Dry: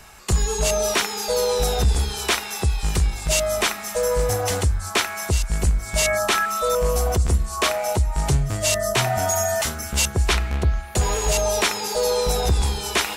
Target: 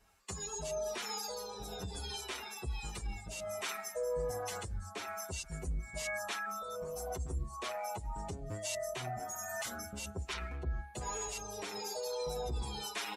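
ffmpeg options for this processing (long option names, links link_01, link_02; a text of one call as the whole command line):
ffmpeg -i in.wav -filter_complex "[0:a]afftdn=noise_reduction=16:noise_floor=-33,highpass=frequency=130:poles=1,areverse,acompressor=threshold=-29dB:ratio=6,areverse,alimiter=level_in=2dB:limit=-24dB:level=0:latency=1:release=37,volume=-2dB,acrossover=split=680[link_01][link_02];[link_01]aeval=exprs='val(0)*(1-0.5/2+0.5/2*cos(2*PI*1.2*n/s))':channel_layout=same[link_03];[link_02]aeval=exprs='val(0)*(1-0.5/2-0.5/2*cos(2*PI*1.2*n/s))':channel_layout=same[link_04];[link_03][link_04]amix=inputs=2:normalize=0,asplit=2[link_05][link_06];[link_06]adelay=6.9,afreqshift=-0.61[link_07];[link_05][link_07]amix=inputs=2:normalize=1" out.wav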